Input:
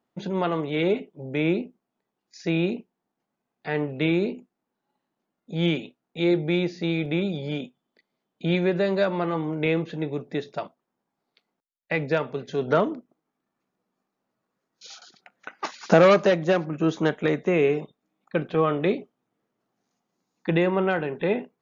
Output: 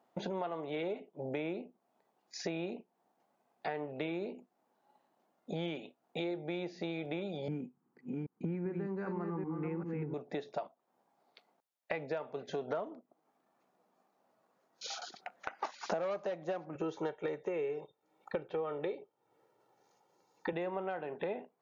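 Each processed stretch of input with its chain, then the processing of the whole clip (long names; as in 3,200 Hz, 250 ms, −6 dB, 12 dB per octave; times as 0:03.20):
0:07.48–0:10.14: delay that plays each chunk backwards 392 ms, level −5 dB + tilt shelving filter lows +9 dB, about 810 Hz + phaser with its sweep stopped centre 1,500 Hz, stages 4
0:16.75–0:20.53: low-shelf EQ 83 Hz +11.5 dB + comb filter 2.2 ms, depth 69%
whole clip: high-pass filter 190 Hz 6 dB per octave; parametric band 720 Hz +10 dB 1.2 octaves; downward compressor 6 to 1, threshold −38 dBFS; level +1.5 dB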